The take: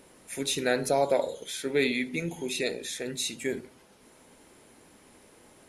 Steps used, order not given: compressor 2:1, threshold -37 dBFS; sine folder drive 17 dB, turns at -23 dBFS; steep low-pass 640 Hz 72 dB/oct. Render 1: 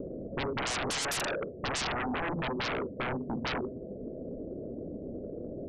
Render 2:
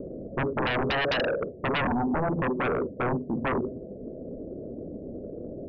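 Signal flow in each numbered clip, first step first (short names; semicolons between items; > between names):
steep low-pass > sine folder > compressor; compressor > steep low-pass > sine folder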